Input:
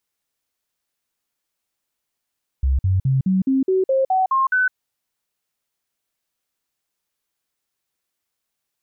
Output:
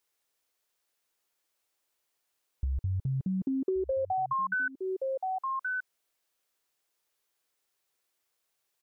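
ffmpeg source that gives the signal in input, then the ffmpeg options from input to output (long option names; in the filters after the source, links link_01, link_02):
-f lavfi -i "aevalsrc='0.188*clip(min(mod(t,0.21),0.16-mod(t,0.21))/0.005,0,1)*sin(2*PI*66.6*pow(2,floor(t/0.21)/2)*mod(t,0.21))':duration=2.1:sample_rate=44100"
-af "lowshelf=frequency=300:width_type=q:width=1.5:gain=-6,aecho=1:1:1125:0.2,acompressor=threshold=-28dB:ratio=12"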